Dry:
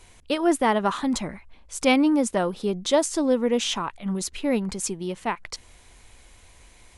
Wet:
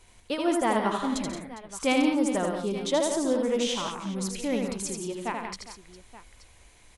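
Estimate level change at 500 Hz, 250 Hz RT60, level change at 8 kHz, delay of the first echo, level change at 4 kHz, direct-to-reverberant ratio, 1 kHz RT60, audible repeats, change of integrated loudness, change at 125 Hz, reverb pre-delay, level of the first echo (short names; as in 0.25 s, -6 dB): -3.0 dB, none, -3.5 dB, 80 ms, -3.5 dB, none, none, 6, -3.5 dB, -3.5 dB, none, -4.0 dB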